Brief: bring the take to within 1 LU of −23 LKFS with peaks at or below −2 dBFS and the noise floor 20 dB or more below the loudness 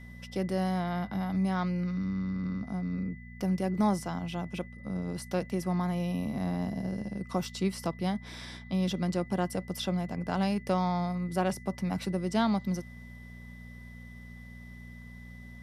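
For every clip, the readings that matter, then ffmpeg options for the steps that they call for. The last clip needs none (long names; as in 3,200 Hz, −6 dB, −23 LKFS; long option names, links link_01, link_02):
mains hum 60 Hz; hum harmonics up to 240 Hz; level of the hum −45 dBFS; interfering tone 2,000 Hz; level of the tone −52 dBFS; integrated loudness −32.0 LKFS; sample peak −14.0 dBFS; target loudness −23.0 LKFS
→ -af "bandreject=frequency=60:width_type=h:width=4,bandreject=frequency=120:width_type=h:width=4,bandreject=frequency=180:width_type=h:width=4,bandreject=frequency=240:width_type=h:width=4"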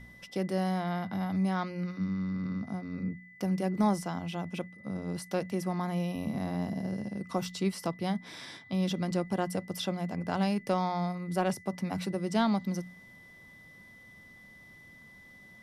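mains hum none found; interfering tone 2,000 Hz; level of the tone −52 dBFS
→ -af "bandreject=frequency=2000:width=30"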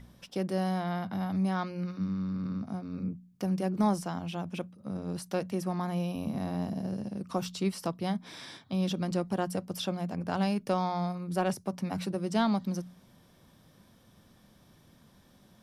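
interfering tone none found; integrated loudness −33.0 LKFS; sample peak −14.0 dBFS; target loudness −23.0 LKFS
→ -af "volume=10dB"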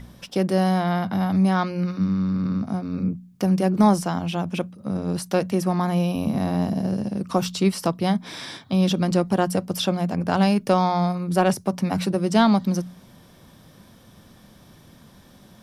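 integrated loudness −23.0 LKFS; sample peak −4.0 dBFS; background noise floor −51 dBFS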